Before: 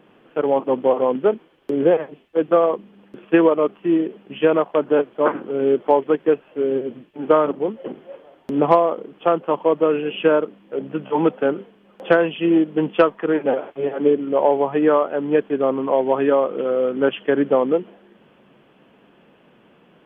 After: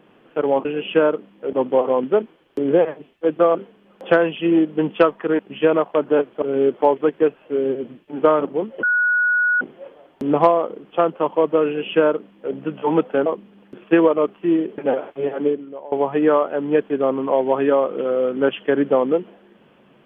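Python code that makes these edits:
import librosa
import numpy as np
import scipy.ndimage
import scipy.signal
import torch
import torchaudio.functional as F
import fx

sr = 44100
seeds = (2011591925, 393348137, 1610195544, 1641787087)

y = fx.edit(x, sr, fx.swap(start_s=2.67, length_s=1.52, other_s=11.54, other_length_s=1.84),
    fx.cut(start_s=5.22, length_s=0.26),
    fx.insert_tone(at_s=7.89, length_s=0.78, hz=1460.0, db=-14.5),
    fx.duplicate(start_s=9.94, length_s=0.88, to_s=0.65),
    fx.fade_out_to(start_s=13.98, length_s=0.54, curve='qua', floor_db=-21.5), tone=tone)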